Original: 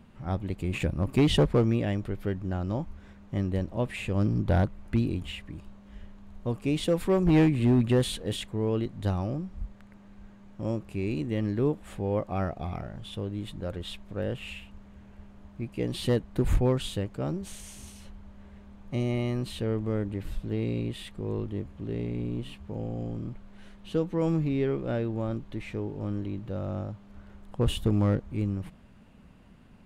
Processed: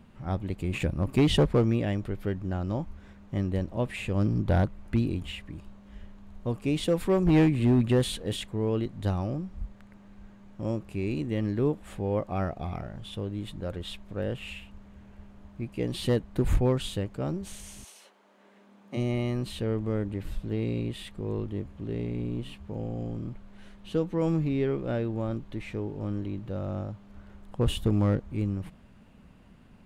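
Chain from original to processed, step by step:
0:17.83–0:18.96: high-pass filter 460 Hz → 190 Hz 24 dB per octave

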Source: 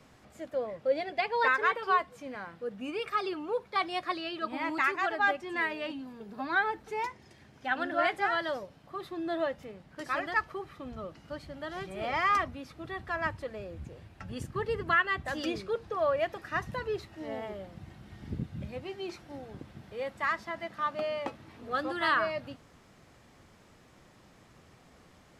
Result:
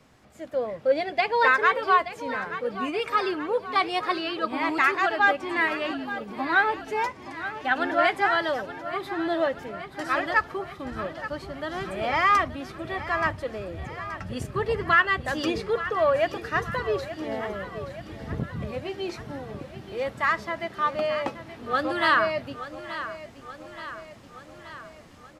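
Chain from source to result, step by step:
automatic gain control gain up to 6.5 dB
on a send: repeating echo 876 ms, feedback 59%, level −13 dB
on the sum: saturating transformer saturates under 490 Hz

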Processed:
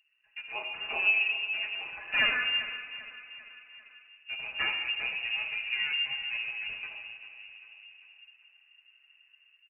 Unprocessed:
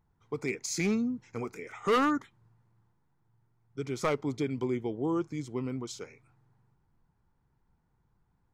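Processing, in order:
lower of the sound and its delayed copy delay 4.9 ms
automatic gain control gain up to 8.5 dB
speed change −12%
flanger 0.36 Hz, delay 7.5 ms, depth 2.8 ms, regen +41%
repeating echo 395 ms, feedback 43%, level −14 dB
convolution reverb RT60 1.8 s, pre-delay 5 ms, DRR 2.5 dB
voice inversion scrambler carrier 2,800 Hz
one half of a high-frequency compander encoder only
level −7 dB

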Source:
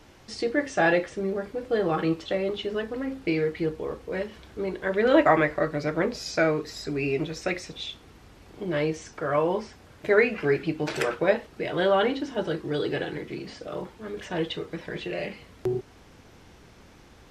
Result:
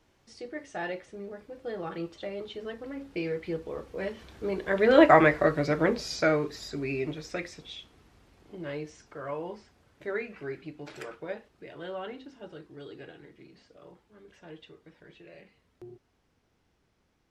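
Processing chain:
source passing by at 0:05.32, 12 m/s, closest 10 metres
level +2 dB

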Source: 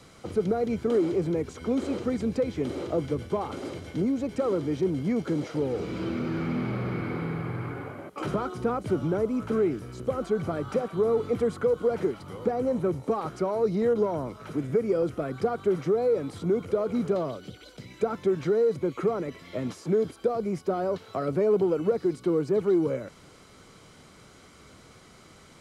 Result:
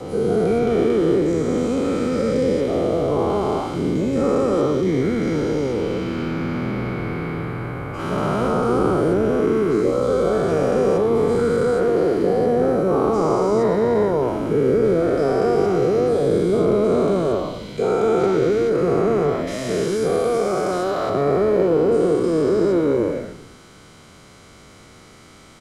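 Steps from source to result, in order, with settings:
every bin's largest magnitude spread in time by 480 ms
0:19.47–0:21.10: tilt shelving filter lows −5.5 dB, about 720 Hz
echo with shifted repeats 115 ms, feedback 52%, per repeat −60 Hz, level −13 dB

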